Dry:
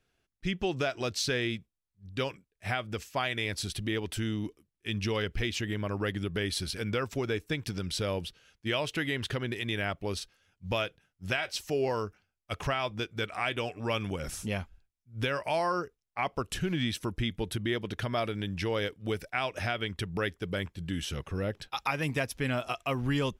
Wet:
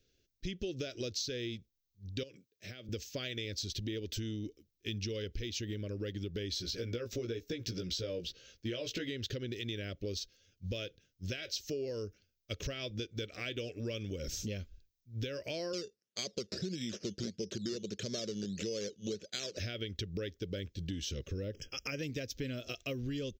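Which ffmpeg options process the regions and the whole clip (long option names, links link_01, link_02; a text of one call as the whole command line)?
ffmpeg -i in.wav -filter_complex "[0:a]asettb=1/sr,asplit=3[link_01][link_02][link_03];[link_01]atrim=end=2.234[link_04];[link_02]atrim=start=2.23:end=2.89,asetpts=PTS-STARTPTS,afade=type=in:duration=0.004:curve=qsin,afade=type=out:start_time=0.656:duration=0.004:curve=qsin,highpass=frequency=120:width=0.5412,highpass=frequency=120:width=1.3066,acompressor=threshold=-42dB:ratio=4:attack=3.2:release=140:knee=1:detection=peak[link_05];[link_03]atrim=start=2.886[link_06];[link_04][link_05]acrossfade=duration=0.004:curve1=hsin:curve2=qsin[link_07];[link_07][link_06]acrossfade=duration=0.004:curve1=qsin:curve2=hsin,asettb=1/sr,asplit=3[link_08][link_09][link_10];[link_08]atrim=end=6.514[link_11];[link_09]atrim=start=6.51:end=9.09,asetpts=PTS-STARTPTS,afade=type=in:duration=0.004:curve=qsin,afade=type=out:start_time=2.576:duration=0.004:curve=qsin,equalizer=frequency=880:width_type=o:width=2.2:gain=7.5,acompressor=threshold=-31dB:ratio=1.5:attack=3.2:release=140:knee=1:detection=peak,asplit=2[link_12][link_13];[link_13]adelay=17,volume=-3.5dB[link_14];[link_12][link_14]amix=inputs=2:normalize=0,atrim=end_sample=113778[link_15];[link_10]atrim=start=9.086[link_16];[link_11][link_15]acrossfade=duration=0.004:curve1=hsin:curve2=qsin[link_17];[link_17][link_16]acrossfade=duration=0.004:curve1=qsin:curve2=hsin,asettb=1/sr,asplit=3[link_18][link_19][link_20];[link_18]atrim=end=15.734[link_21];[link_19]atrim=start=15.73:end=19.58,asetpts=PTS-STARTPTS,afade=type=in:duration=0.004:curve=qsin,afade=type=out:start_time=3.846:duration=0.004:curve=qsin,acrusher=samples=11:mix=1:aa=0.000001:lfo=1:lforange=6.6:lforate=1.6,highpass=170,equalizer=frequency=200:width_type=q:width=4:gain=9,equalizer=frequency=280:width_type=q:width=4:gain=-7,equalizer=frequency=400:width_type=q:width=4:gain=3,equalizer=frequency=2100:width_type=q:width=4:gain=-4,equalizer=frequency=5200:width_type=q:width=4:gain=6,lowpass=frequency=9700:width=0.5412,lowpass=frequency=9700:width=1.3066[link_22];[link_20]atrim=start=19.576[link_23];[link_21][link_22]acrossfade=duration=0.004:curve1=hsin:curve2=qsin[link_24];[link_24][link_23]acrossfade=duration=0.004:curve1=qsin:curve2=hsin,asettb=1/sr,asplit=3[link_25][link_26][link_27];[link_25]atrim=end=21.544[link_28];[link_26]atrim=start=21.54:end=21.99,asetpts=PTS-STARTPTS,afade=type=in:duration=0.004:curve=qsin,afade=type=out:start_time=0.446:duration=0.004:curve=qsin,asuperstop=centerf=4000:order=20:qfactor=2.6,acompressor=mode=upward:threshold=-39dB:ratio=2.5:attack=3.2:release=140:knee=2.83:detection=peak[link_29];[link_27]atrim=start=21.986[link_30];[link_28][link_29]acrossfade=duration=0.004:curve1=hsin:curve2=qsin[link_31];[link_31][link_30]acrossfade=duration=0.004:curve1=qsin:curve2=hsin,firequalizer=gain_entry='entry(110,0);entry(150,-5);entry(280,0);entry(540,0);entry(820,-28);entry(1500,-11);entry(3900,3);entry(6400,5);entry(10000,-28);entry(15000,9)':delay=0.05:min_phase=1,acompressor=threshold=-38dB:ratio=6,volume=2.5dB" out.wav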